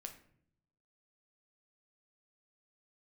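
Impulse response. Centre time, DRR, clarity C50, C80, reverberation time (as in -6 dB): 12 ms, 5.0 dB, 10.5 dB, 14.5 dB, 0.65 s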